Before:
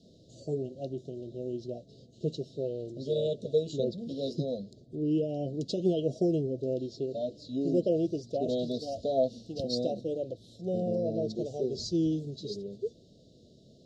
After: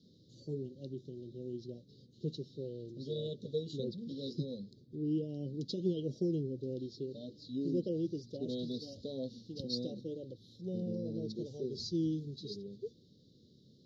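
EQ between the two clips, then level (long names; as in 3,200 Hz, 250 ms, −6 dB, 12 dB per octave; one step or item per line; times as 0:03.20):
high-pass filter 85 Hz
phaser with its sweep stopped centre 2,500 Hz, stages 6
−3.0 dB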